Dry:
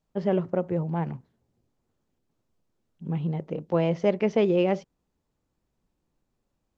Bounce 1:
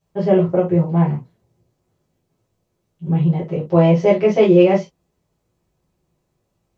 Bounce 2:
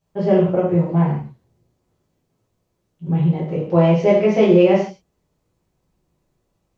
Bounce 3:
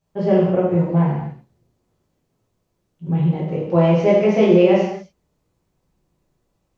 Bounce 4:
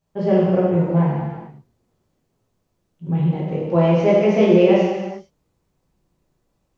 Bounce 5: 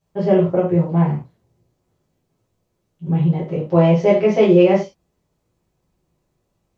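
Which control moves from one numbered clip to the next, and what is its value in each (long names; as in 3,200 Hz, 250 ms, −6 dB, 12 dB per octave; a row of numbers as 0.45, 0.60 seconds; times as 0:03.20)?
reverb whose tail is shaped and stops, gate: 90, 200, 310, 490, 130 milliseconds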